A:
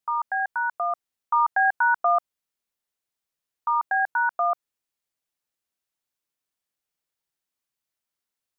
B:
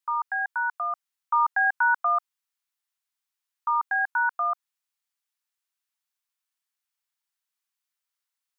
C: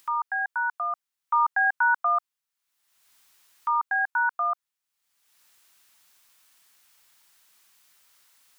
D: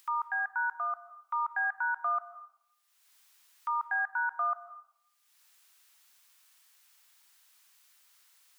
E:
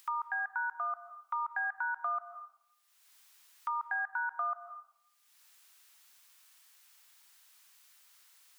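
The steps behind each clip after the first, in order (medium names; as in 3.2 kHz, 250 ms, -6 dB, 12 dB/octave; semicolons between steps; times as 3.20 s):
high-pass 880 Hz 24 dB/octave
upward compressor, threshold -41 dBFS
high-pass 830 Hz 6 dB/octave; peak limiter -21.5 dBFS, peak gain reduction 5.5 dB; algorithmic reverb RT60 0.7 s, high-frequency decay 0.95×, pre-delay 110 ms, DRR 13 dB; trim -2.5 dB
compression 2.5:1, threshold -35 dBFS, peak gain reduction 5.5 dB; trim +1.5 dB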